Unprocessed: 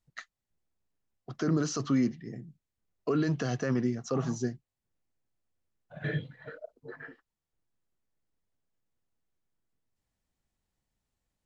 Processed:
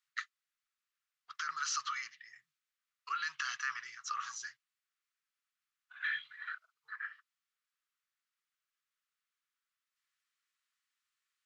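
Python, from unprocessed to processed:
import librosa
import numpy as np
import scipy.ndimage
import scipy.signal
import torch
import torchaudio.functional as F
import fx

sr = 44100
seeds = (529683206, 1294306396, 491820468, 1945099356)

y = scipy.signal.sosfilt(scipy.signal.ellip(4, 1.0, 50, 1200.0, 'highpass', fs=sr, output='sos'), x)
y = fx.high_shelf(y, sr, hz=5800.0, db=-9.0)
y = fx.band_squash(y, sr, depth_pct=40, at=(6.02, 6.55))
y = y * 10.0 ** (6.0 / 20.0)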